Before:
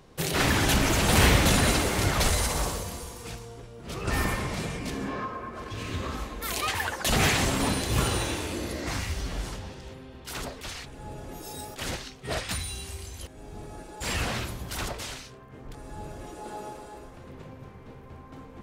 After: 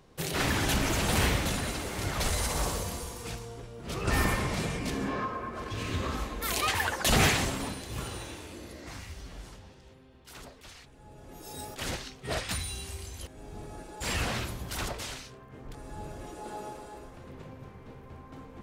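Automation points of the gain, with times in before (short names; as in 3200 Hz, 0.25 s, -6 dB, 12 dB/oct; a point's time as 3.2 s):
1.02 s -4.5 dB
1.72 s -11 dB
2.84 s +0.5 dB
7.21 s +0.5 dB
7.77 s -11.5 dB
11.11 s -11.5 dB
11.62 s -1.5 dB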